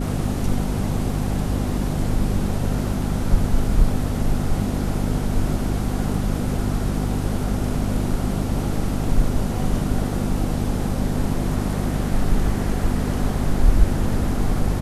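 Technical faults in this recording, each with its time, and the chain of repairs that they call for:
mains hum 50 Hz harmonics 5 −25 dBFS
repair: hum removal 50 Hz, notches 5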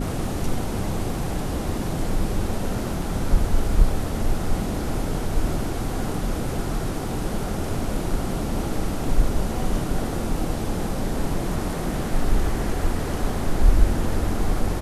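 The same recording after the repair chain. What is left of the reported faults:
none of them is left

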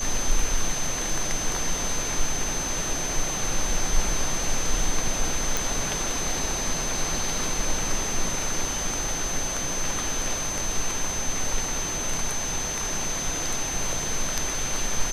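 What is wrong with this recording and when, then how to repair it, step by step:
whistle 6,200 Hz −29 dBFS
0:05.57: click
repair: click removal
notch filter 6,200 Hz, Q 30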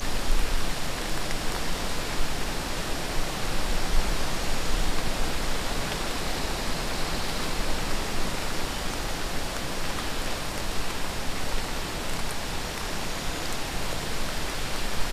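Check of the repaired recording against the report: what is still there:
none of them is left

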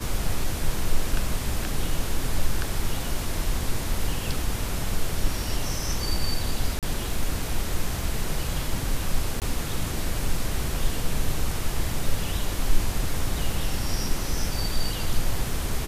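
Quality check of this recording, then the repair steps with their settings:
0:06.79–0:06.83: drop-out 37 ms
0:09.40–0:09.42: drop-out 18 ms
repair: repair the gap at 0:06.79, 37 ms
repair the gap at 0:09.40, 18 ms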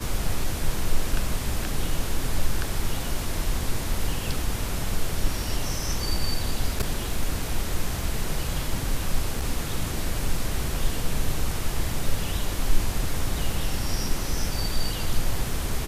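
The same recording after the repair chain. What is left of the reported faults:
none of them is left

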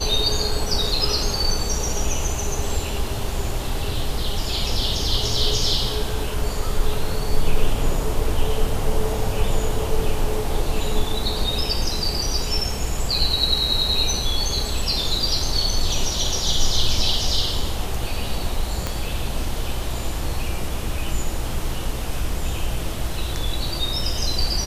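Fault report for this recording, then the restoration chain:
0:18.87: click −9 dBFS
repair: click removal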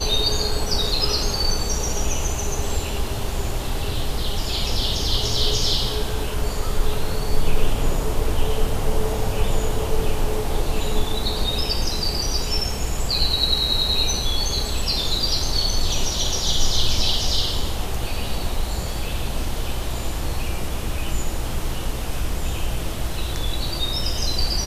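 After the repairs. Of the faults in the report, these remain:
0:18.87: click

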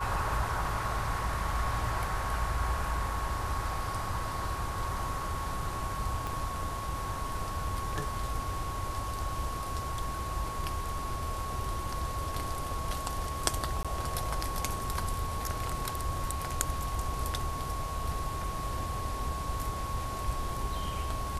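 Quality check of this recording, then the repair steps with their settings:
whistle 1,100 Hz −37 dBFS
0:06.27: click
0:13.83–0:13.85: drop-out 16 ms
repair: click removal
notch filter 1,100 Hz, Q 30
repair the gap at 0:13.83, 16 ms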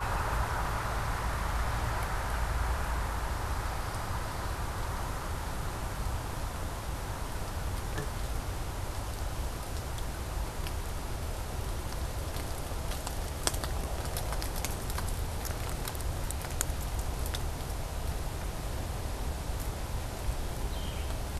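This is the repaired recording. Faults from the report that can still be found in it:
0:06.27: click

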